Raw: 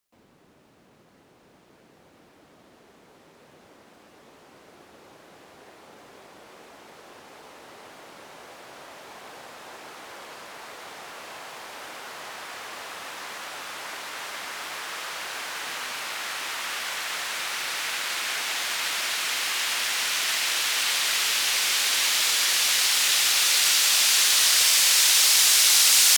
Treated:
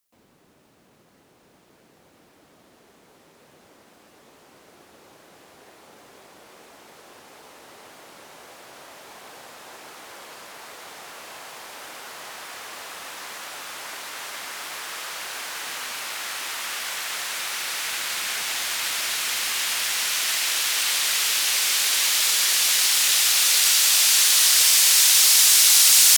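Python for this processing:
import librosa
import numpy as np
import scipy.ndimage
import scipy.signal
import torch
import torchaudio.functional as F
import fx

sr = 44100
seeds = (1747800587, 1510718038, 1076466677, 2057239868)

y = fx.octave_divider(x, sr, octaves=1, level_db=-3.0, at=(17.85, 20.0))
y = fx.high_shelf(y, sr, hz=6200.0, db=7.5)
y = y * 10.0 ** (-1.0 / 20.0)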